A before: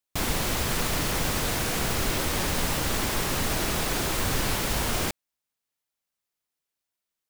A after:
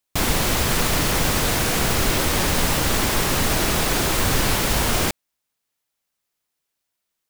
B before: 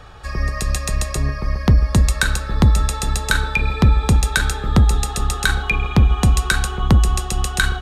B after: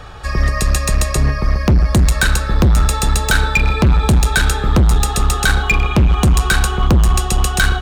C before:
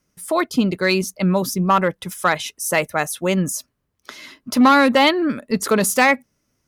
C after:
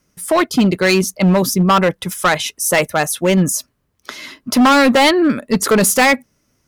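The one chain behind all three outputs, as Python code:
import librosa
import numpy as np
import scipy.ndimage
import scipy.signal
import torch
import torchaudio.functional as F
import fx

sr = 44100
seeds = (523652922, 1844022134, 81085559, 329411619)

y = np.clip(10.0 ** (14.5 / 20.0) * x, -1.0, 1.0) / 10.0 ** (14.5 / 20.0)
y = y * librosa.db_to_amplitude(6.5)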